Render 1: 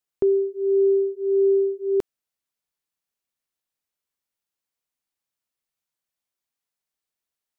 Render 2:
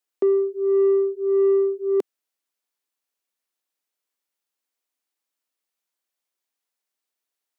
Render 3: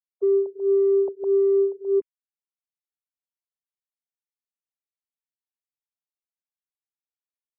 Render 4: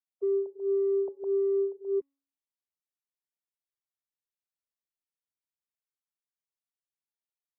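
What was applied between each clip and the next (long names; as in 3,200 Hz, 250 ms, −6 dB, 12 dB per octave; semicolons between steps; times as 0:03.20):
high-pass filter 240 Hz 24 dB per octave; in parallel at −3 dB: soft clipping −20 dBFS, distortion −14 dB; on the sum: level −2.5 dB
three sine waves on the formant tracks; low-shelf EQ 300 Hz +9.5 dB; level −4.5 dB
hum removal 276.9 Hz, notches 27; level −7.5 dB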